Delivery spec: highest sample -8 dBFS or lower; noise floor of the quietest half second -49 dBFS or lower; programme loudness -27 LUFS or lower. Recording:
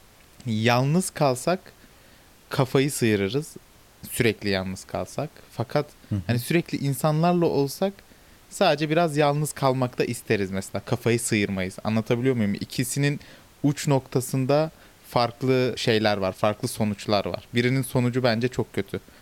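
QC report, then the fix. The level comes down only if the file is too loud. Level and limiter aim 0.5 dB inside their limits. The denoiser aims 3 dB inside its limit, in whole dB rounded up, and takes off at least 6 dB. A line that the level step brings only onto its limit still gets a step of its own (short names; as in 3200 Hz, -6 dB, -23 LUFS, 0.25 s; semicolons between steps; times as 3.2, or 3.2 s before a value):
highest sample -7.0 dBFS: fail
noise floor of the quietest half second -53 dBFS: OK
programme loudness -24.5 LUFS: fail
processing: gain -3 dB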